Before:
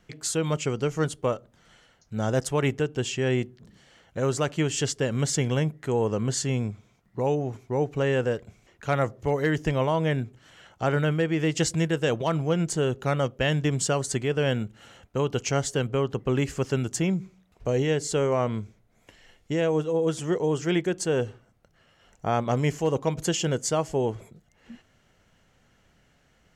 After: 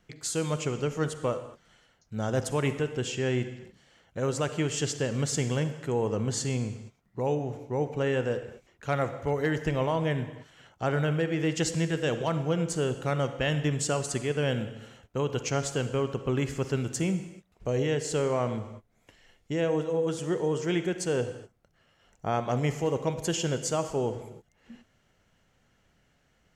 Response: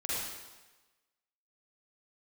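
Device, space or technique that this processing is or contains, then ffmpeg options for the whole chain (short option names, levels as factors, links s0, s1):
keyed gated reverb: -filter_complex "[0:a]asplit=3[s0][s1][s2];[1:a]atrim=start_sample=2205[s3];[s1][s3]afir=irnorm=-1:irlink=0[s4];[s2]apad=whole_len=1170981[s5];[s4][s5]sidechaingate=range=0.0224:threshold=0.00316:ratio=16:detection=peak,volume=0.211[s6];[s0][s6]amix=inputs=2:normalize=0,volume=0.596"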